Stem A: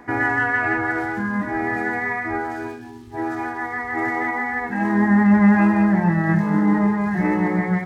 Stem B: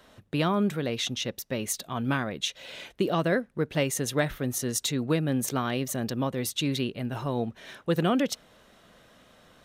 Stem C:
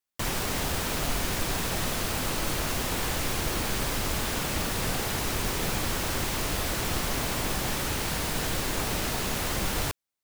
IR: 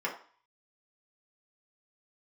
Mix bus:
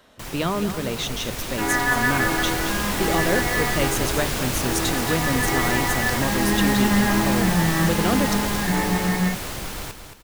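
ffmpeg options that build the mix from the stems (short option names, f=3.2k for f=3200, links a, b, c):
-filter_complex "[0:a]adelay=1500,volume=-5dB,asplit=2[a][b];[b]volume=-8.5dB[c];[1:a]bandreject=f=50:t=h:w=6,bandreject=f=100:t=h:w=6,bandreject=f=150:t=h:w=6,bandreject=f=200:t=h:w=6,volume=1.5dB,asplit=2[d][e];[e]volume=-11dB[f];[2:a]dynaudnorm=f=390:g=9:m=9dB,volume=-6dB,asplit=2[g][h];[h]volume=-8.5dB[i];[3:a]atrim=start_sample=2205[j];[c][j]afir=irnorm=-1:irlink=0[k];[f][i]amix=inputs=2:normalize=0,aecho=0:1:222|444|666|888|1110:1|0.37|0.137|0.0507|0.0187[l];[a][d][g][k][l]amix=inputs=5:normalize=0"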